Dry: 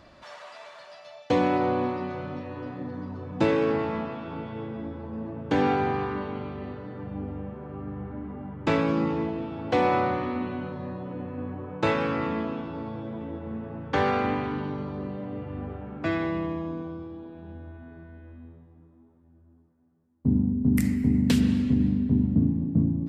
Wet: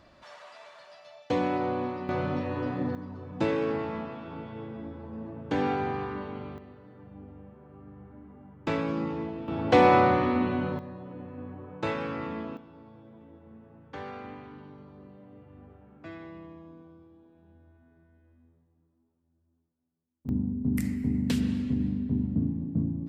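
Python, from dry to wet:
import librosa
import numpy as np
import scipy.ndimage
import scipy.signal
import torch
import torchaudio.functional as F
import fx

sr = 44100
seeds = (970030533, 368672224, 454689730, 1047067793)

y = fx.gain(x, sr, db=fx.steps((0.0, -4.5), (2.09, 5.0), (2.95, -4.5), (6.58, -12.5), (8.67, -5.5), (9.48, 4.0), (10.79, -6.5), (12.57, -16.0), (20.29, -5.5)))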